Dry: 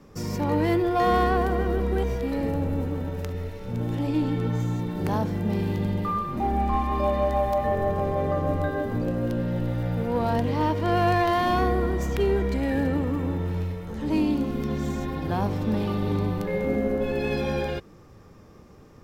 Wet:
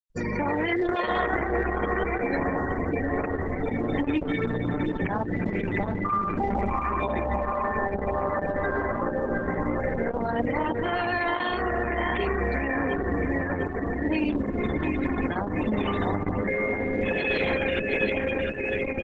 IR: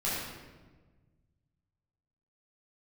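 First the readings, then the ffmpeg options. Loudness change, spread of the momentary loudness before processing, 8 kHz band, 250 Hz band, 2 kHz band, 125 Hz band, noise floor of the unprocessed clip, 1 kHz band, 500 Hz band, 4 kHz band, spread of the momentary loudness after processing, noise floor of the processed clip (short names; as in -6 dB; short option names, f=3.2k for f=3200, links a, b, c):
-1.0 dB, 7 LU, n/a, -1.5 dB, +7.0 dB, -5.5 dB, -50 dBFS, -1.0 dB, -0.5 dB, +0.5 dB, 3 LU, -31 dBFS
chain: -filter_complex "[0:a]equalizer=f=125:t=o:w=1:g=-12,equalizer=f=2k:t=o:w=1:g=10,equalizer=f=4k:t=o:w=1:g=7,asplit=2[a][b];[b]adelay=705,lowpass=f=4.6k:p=1,volume=-5.5dB,asplit=2[c][d];[d]adelay=705,lowpass=f=4.6k:p=1,volume=0.55,asplit=2[e][f];[f]adelay=705,lowpass=f=4.6k:p=1,volume=0.55,asplit=2[g][h];[h]adelay=705,lowpass=f=4.6k:p=1,volume=0.55,asplit=2[i][j];[j]adelay=705,lowpass=f=4.6k:p=1,volume=0.55,asplit=2[k][l];[l]adelay=705,lowpass=f=4.6k:p=1,volume=0.55,asplit=2[m][n];[n]adelay=705,lowpass=f=4.6k:p=1,volume=0.55[o];[c][e][g][i][k][m][o]amix=inputs=7:normalize=0[p];[a][p]amix=inputs=2:normalize=0,acompressor=threshold=-31dB:ratio=3,highshelf=f=9.8k:g=11,afftfilt=real='re*gte(hypot(re,im),0.0316)':imag='im*gte(hypot(re,im),0.0316)':win_size=1024:overlap=0.75,alimiter=level_in=1dB:limit=-24dB:level=0:latency=1:release=79,volume=-1dB,asuperstop=centerf=5300:order=4:qfactor=1.9,volume=8dB" -ar 48000 -c:a libopus -b:a 10k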